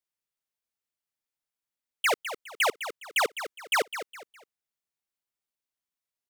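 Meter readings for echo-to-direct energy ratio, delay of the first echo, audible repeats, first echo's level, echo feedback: -10.5 dB, 206 ms, 3, -11.0 dB, 32%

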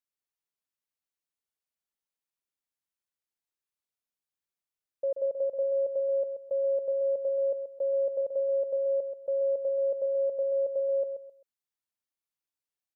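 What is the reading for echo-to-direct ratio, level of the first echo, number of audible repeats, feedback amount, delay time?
-7.5 dB, -8.0 dB, 3, 26%, 131 ms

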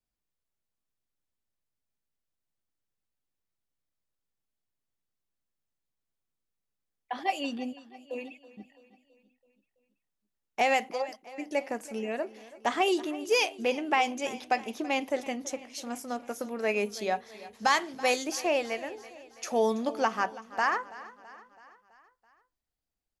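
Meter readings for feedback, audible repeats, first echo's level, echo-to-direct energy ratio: 55%, 4, -18.0 dB, -16.5 dB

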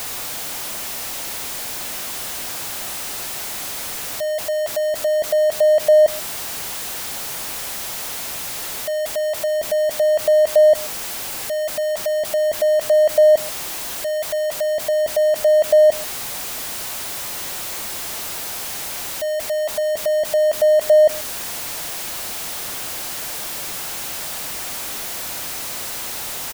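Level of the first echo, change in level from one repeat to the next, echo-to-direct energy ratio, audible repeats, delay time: -21.5 dB, no regular repeats, -21.5 dB, 1, 135 ms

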